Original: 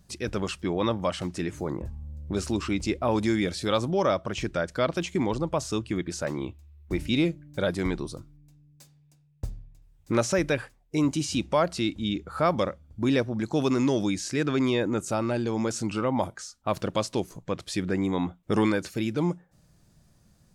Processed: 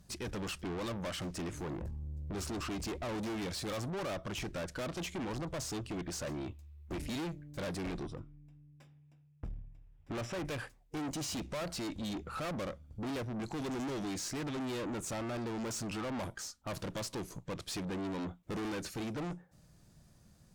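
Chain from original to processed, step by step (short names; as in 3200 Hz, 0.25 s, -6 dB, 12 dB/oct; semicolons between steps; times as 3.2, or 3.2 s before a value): 8.06–10.45 polynomial smoothing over 25 samples; tube stage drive 36 dB, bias 0.4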